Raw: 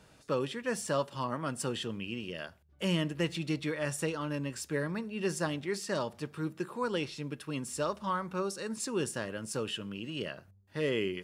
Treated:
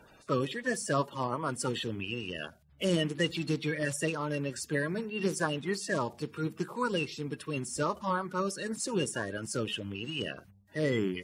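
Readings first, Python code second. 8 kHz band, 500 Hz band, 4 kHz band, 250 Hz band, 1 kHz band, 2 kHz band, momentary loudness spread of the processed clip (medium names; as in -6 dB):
+2.0 dB, +1.0 dB, +2.0 dB, +1.5 dB, +2.5 dB, +3.5 dB, 6 LU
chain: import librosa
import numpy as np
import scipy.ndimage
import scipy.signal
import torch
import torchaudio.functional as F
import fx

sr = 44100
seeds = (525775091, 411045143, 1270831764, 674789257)

y = fx.spec_quant(x, sr, step_db=30)
y = y * librosa.db_to_amplitude(2.5)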